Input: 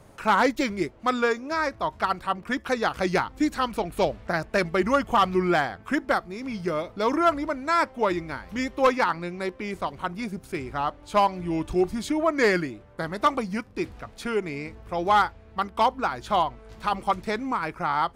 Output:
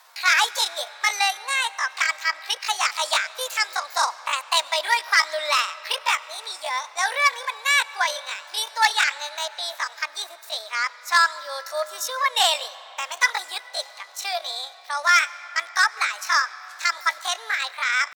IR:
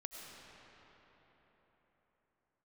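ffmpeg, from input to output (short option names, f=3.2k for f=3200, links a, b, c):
-filter_complex "[0:a]highpass=f=320:w=0.5412,highpass=f=320:w=1.3066,acrossover=split=410 3500:gain=0.0794 1 0.2[a][b][c];[a][b][c]amix=inputs=3:normalize=0,asetrate=74167,aresample=44100,atempo=0.594604,aexciter=amount=4.9:drive=3.6:freq=4k,asplit=2[d][e];[1:a]atrim=start_sample=2205[f];[e][f]afir=irnorm=-1:irlink=0,volume=-11dB[g];[d][g]amix=inputs=2:normalize=0,volume=2dB"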